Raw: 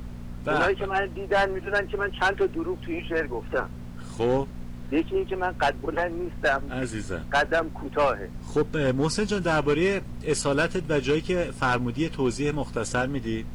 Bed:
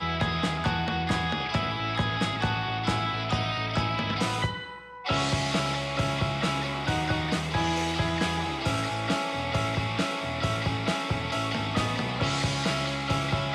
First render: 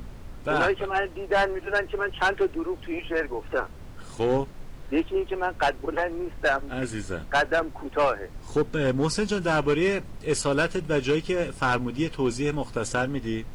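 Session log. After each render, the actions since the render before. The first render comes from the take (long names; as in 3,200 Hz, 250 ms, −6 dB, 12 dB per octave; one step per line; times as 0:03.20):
hum removal 60 Hz, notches 4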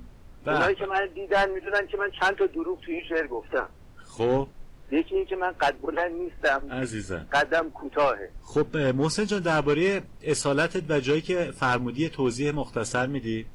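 noise reduction from a noise print 8 dB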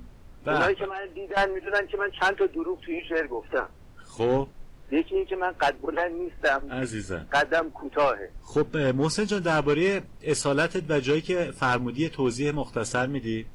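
0:00.88–0:01.37: downward compressor 5 to 1, threshold −31 dBFS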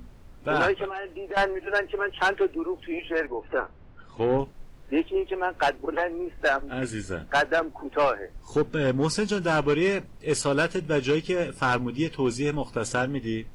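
0:03.27–0:04.39: low-pass filter 2,700 Hz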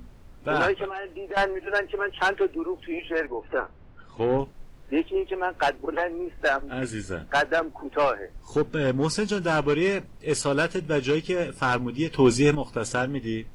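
0:12.14–0:12.55: clip gain +7 dB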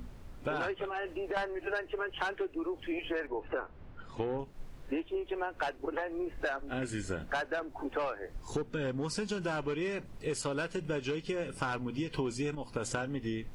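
downward compressor 12 to 1, threshold −31 dBFS, peak gain reduction 17.5 dB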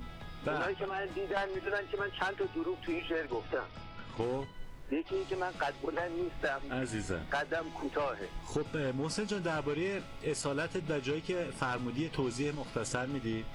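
mix in bed −22 dB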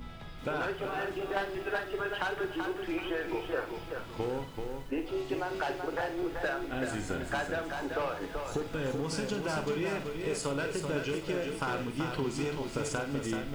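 on a send: flutter between parallel walls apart 8.6 metres, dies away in 0.33 s
on the sum: feedback echo at a low word length 383 ms, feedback 35%, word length 9 bits, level −5 dB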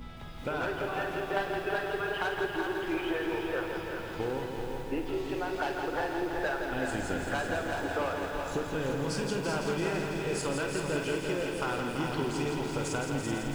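feedback echo at a low word length 167 ms, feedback 80%, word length 10 bits, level −6 dB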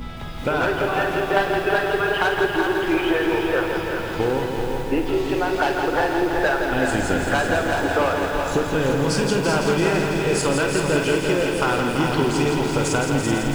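level +11.5 dB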